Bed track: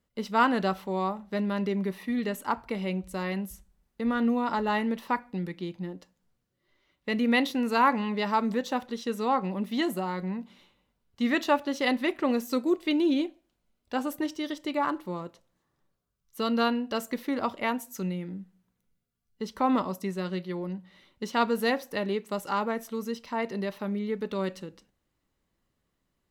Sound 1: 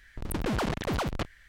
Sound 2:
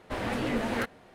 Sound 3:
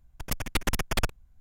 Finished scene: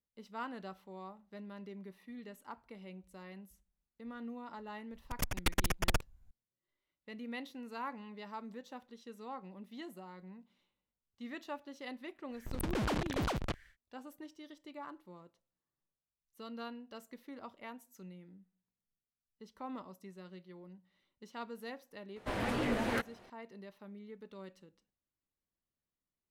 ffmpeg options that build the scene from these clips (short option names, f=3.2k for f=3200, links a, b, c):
-filter_complex "[0:a]volume=-19dB[a];[3:a]atrim=end=1.4,asetpts=PTS-STARTPTS,volume=-4.5dB,afade=t=in:d=0.004:c=hsin,afade=t=out:st=1.396:d=0.004:c=hsin,adelay=4910[b];[1:a]atrim=end=1.48,asetpts=PTS-STARTPTS,volume=-5dB,afade=t=in:d=0.1,afade=t=out:st=1.38:d=0.1,adelay=12290[c];[2:a]atrim=end=1.14,asetpts=PTS-STARTPTS,volume=-3.5dB,afade=t=in:d=0.004:c=hsin,afade=t=out:st=1.136:d=0.004:c=hsin,adelay=22160[d];[a][b][c][d]amix=inputs=4:normalize=0"